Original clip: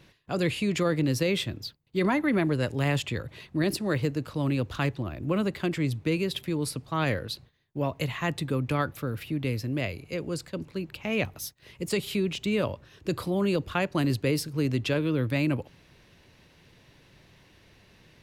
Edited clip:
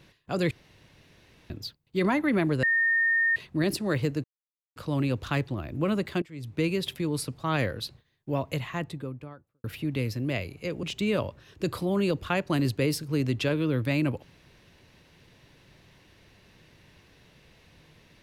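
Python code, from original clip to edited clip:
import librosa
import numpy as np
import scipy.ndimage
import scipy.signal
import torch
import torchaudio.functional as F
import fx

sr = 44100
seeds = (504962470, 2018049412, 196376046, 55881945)

y = fx.studio_fade_out(x, sr, start_s=7.81, length_s=1.31)
y = fx.edit(y, sr, fx.room_tone_fill(start_s=0.51, length_s=0.99),
    fx.bleep(start_s=2.63, length_s=0.73, hz=1830.0, db=-20.5),
    fx.insert_silence(at_s=4.24, length_s=0.52),
    fx.fade_in_from(start_s=5.7, length_s=0.38, curve='qua', floor_db=-20.5),
    fx.cut(start_s=10.31, length_s=1.97), tone=tone)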